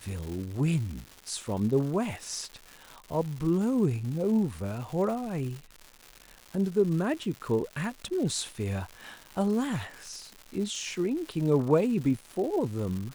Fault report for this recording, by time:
surface crackle 290 per second −36 dBFS

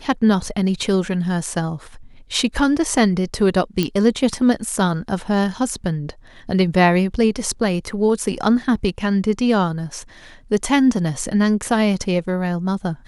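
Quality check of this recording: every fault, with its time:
0:03.83: click −6 dBFS

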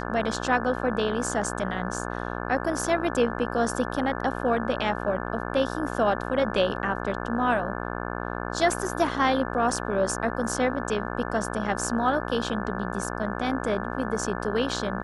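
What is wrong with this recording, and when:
mains buzz 60 Hz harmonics 29 −32 dBFS

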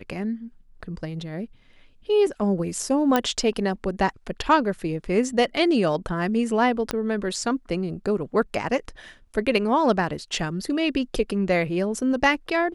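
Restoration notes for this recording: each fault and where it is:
0:03.16: click −7 dBFS
0:06.91: click −10 dBFS

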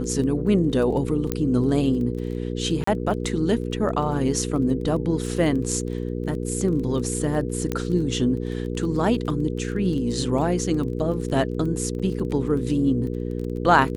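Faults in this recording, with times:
surface crackle 17 per second −31 dBFS
mains hum 60 Hz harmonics 8 −28 dBFS
0:01.32: click −9 dBFS
0:02.84–0:02.87: drop-out 34 ms
0:07.72: click −12 dBFS
0:11.99–0:12.00: drop-out 6.7 ms

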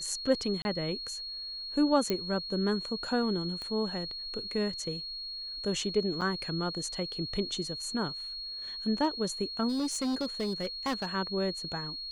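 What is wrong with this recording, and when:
whistle 4,300 Hz −37 dBFS
0:00.62–0:00.65: drop-out 31 ms
0:02.10: click −15 dBFS
0:03.62: click −26 dBFS
0:06.21–0:06.22: drop-out 6.5 ms
0:09.68–0:11.06: clipping −27.5 dBFS

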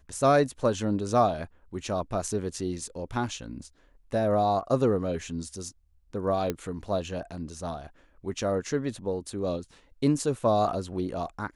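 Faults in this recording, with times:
0:06.50: click −15 dBFS

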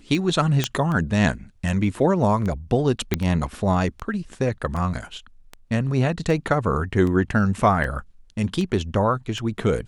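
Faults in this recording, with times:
scratch tick 78 rpm
0:00.64: click −5 dBFS
0:03.14: click −6 dBFS

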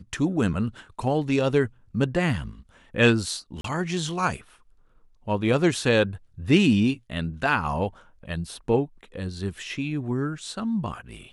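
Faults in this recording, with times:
0:03.61–0:03.64: drop-out 33 ms

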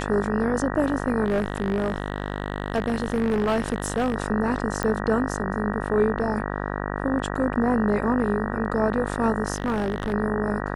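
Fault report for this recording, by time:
mains buzz 50 Hz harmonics 38 −29 dBFS
0:01.24–0:04.16: clipping −18.5 dBFS
0:04.83: click −11 dBFS
0:09.54–0:10.14: clipping −20 dBFS

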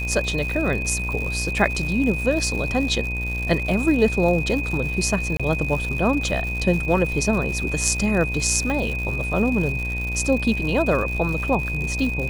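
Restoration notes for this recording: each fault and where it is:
mains buzz 60 Hz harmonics 18 −28 dBFS
surface crackle 170 per second −28 dBFS
whistle 2,500 Hz −27 dBFS
0:05.37–0:05.40: drop-out 26 ms
0:08.70: click −14 dBFS

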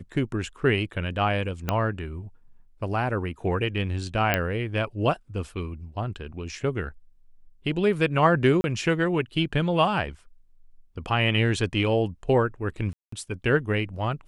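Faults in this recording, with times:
0:01.69: click −10 dBFS
0:04.34: click −7 dBFS
0:08.61–0:08.64: drop-out 31 ms
0:12.93–0:13.12: drop-out 194 ms

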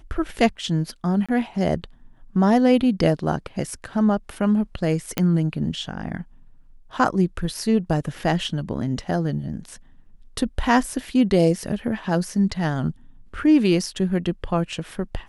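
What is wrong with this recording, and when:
0:01.26–0:01.29: drop-out 26 ms
0:05.18: click −6 dBFS

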